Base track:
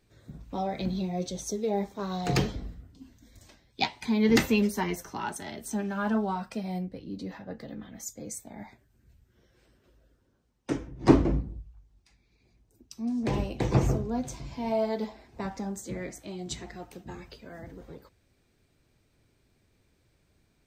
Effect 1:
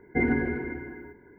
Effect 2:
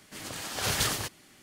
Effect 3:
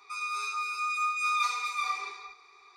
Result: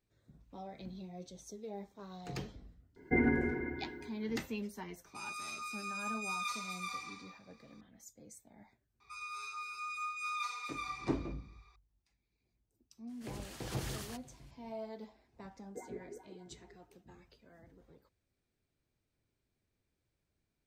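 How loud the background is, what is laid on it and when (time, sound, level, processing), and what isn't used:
base track -16 dB
2.96 s: add 1 -4.5 dB
5.05 s: add 3 -12 dB + treble shelf 5.2 kHz +11.5 dB
9.00 s: add 3 -10.5 dB
13.09 s: add 2 -14 dB + peak limiter -21 dBFS
15.60 s: add 1 -8.5 dB + wah-wah 5.1 Hz 390–1000 Hz, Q 6.9

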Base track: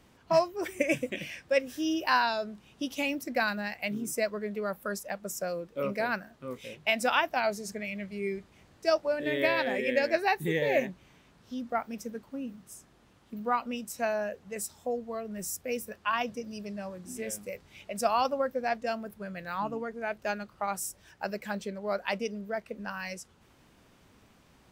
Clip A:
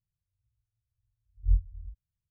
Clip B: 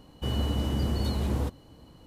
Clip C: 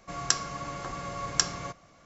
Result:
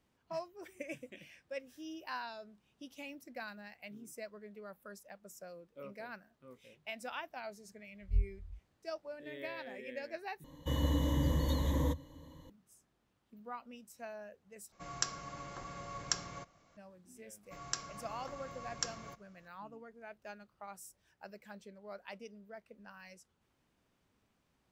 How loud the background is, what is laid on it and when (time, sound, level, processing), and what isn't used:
base track -16.5 dB
6.65 s: add A -7 dB
10.44 s: replace with B -5.5 dB + rippled EQ curve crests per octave 1.1, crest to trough 16 dB
14.72 s: replace with C -9.5 dB
17.43 s: add C -12.5 dB

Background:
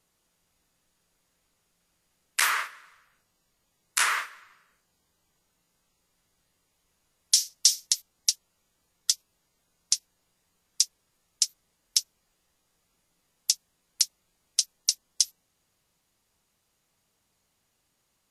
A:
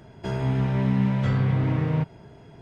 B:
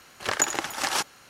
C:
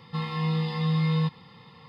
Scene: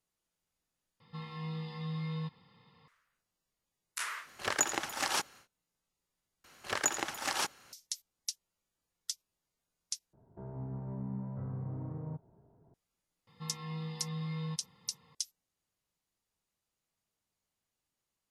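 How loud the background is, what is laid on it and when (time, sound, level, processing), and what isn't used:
background -14 dB
1.00 s: replace with C -13 dB
4.19 s: add B -6 dB, fades 0.10 s
6.44 s: replace with B -7 dB
10.13 s: replace with A -17 dB + low-pass 1.1 kHz 24 dB/octave
13.27 s: add C -13.5 dB

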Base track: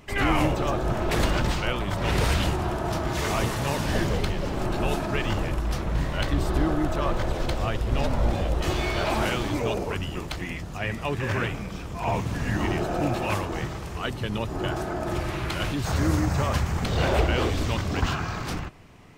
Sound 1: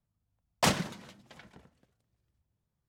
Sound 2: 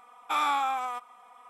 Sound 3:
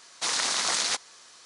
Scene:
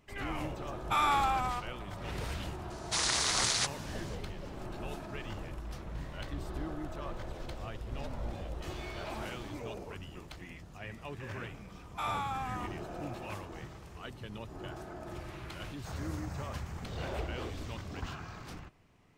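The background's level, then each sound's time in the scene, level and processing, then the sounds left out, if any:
base track -15 dB
0.61 s: add 2 -1.5 dB
2.70 s: add 3 -3.5 dB
11.68 s: add 2 -8 dB + gain riding
not used: 1

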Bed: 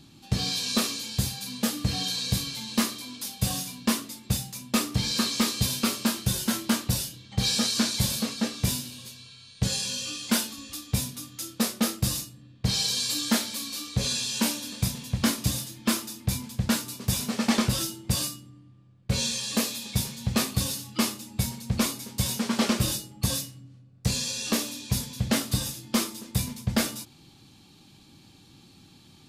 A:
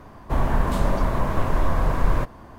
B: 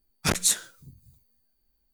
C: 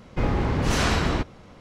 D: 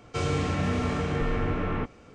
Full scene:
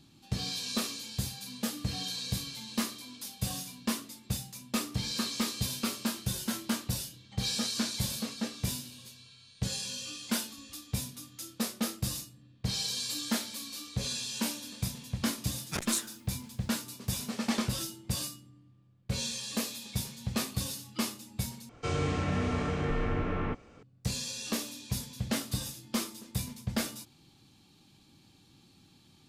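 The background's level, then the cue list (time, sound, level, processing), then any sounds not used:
bed -7 dB
15.47 s: add B -10.5 dB
21.69 s: replace with D -3.5 dB
not used: A, C

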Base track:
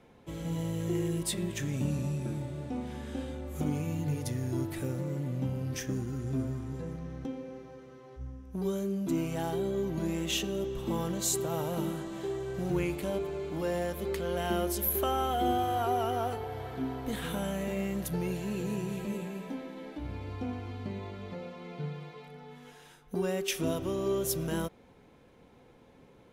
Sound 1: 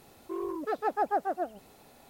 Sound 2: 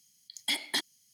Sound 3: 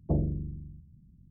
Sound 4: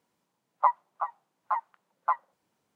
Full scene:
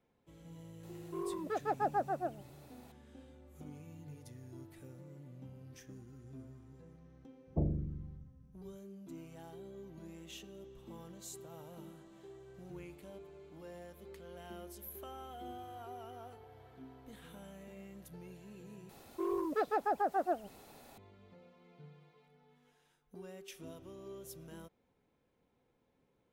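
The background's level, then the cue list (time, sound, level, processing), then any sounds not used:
base track -18.5 dB
0.83 s: add 1 -5 dB
7.47 s: add 3 -5.5 dB
18.89 s: replace with 1 -0.5 dB + peak limiter -23 dBFS
not used: 2, 4

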